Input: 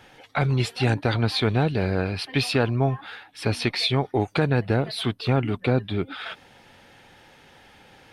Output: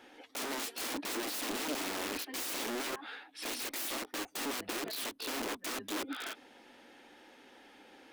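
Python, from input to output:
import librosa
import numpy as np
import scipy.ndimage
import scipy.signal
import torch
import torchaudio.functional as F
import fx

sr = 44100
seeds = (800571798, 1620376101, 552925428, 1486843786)

y = (np.mod(10.0 ** (26.5 / 20.0) * x + 1.0, 2.0) - 1.0) / 10.0 ** (26.5 / 20.0)
y = fx.low_shelf_res(y, sr, hz=190.0, db=-12.5, q=3.0)
y = fx.end_taper(y, sr, db_per_s=420.0)
y = F.gain(torch.from_numpy(y), -6.5).numpy()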